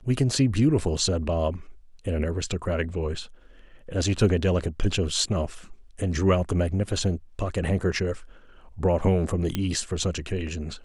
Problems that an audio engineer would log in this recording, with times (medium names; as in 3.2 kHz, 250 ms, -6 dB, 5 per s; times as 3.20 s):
9.55 s: pop -12 dBFS